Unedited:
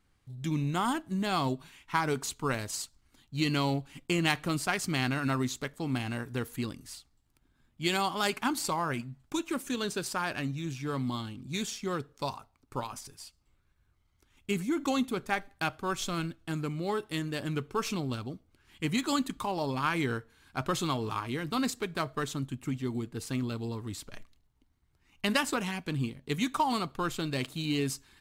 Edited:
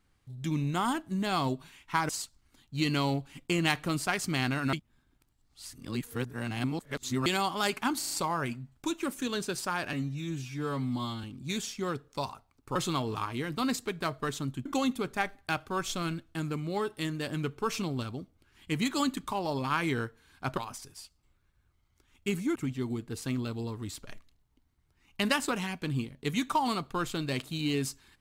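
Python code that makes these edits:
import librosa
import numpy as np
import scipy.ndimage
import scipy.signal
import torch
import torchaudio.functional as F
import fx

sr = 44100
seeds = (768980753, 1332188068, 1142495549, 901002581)

y = fx.edit(x, sr, fx.cut(start_s=2.09, length_s=0.6),
    fx.reverse_span(start_s=5.33, length_s=2.53),
    fx.stutter(start_s=8.59, slice_s=0.04, count=4),
    fx.stretch_span(start_s=10.41, length_s=0.87, factor=1.5),
    fx.swap(start_s=12.8, length_s=1.98, other_s=20.7, other_length_s=1.9), tone=tone)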